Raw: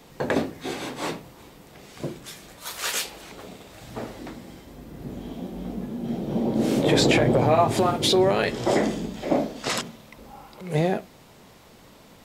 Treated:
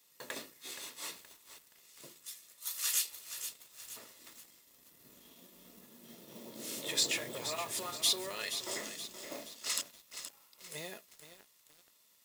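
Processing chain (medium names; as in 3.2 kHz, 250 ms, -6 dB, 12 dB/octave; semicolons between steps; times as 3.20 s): companding laws mixed up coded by A; pre-emphasis filter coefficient 0.97; comb of notches 780 Hz; bit-crushed delay 473 ms, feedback 55%, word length 8-bit, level -9 dB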